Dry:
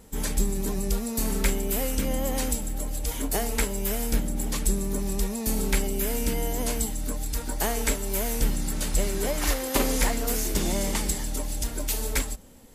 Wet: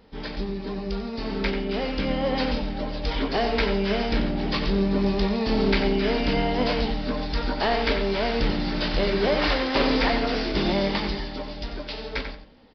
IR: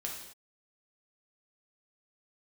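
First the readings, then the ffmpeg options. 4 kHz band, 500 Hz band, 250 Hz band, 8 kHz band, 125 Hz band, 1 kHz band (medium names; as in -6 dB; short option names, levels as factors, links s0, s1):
+6.0 dB, +6.5 dB, +5.5 dB, under -25 dB, +1.0 dB, +7.0 dB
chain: -filter_complex "[0:a]lowshelf=f=170:g=-8.5,dynaudnorm=f=200:g=21:m=3.76,asoftclip=type=hard:threshold=0.141,asplit=2[s0][s1];[s1]adelay=20,volume=0.299[s2];[s0][s2]amix=inputs=2:normalize=0,asplit=2[s3][s4];[s4]adelay=91,lowpass=f=3800:p=1,volume=0.447,asplit=2[s5][s6];[s6]adelay=91,lowpass=f=3800:p=1,volume=0.23,asplit=2[s7][s8];[s8]adelay=91,lowpass=f=3800:p=1,volume=0.23[s9];[s5][s7][s9]amix=inputs=3:normalize=0[s10];[s3][s10]amix=inputs=2:normalize=0,aresample=11025,aresample=44100"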